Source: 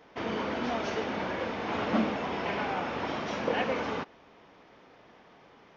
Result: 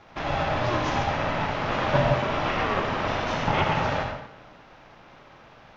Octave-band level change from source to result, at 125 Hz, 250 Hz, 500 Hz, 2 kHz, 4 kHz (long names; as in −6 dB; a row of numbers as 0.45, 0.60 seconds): +14.5, +1.5, +5.0, +6.5, +6.5 decibels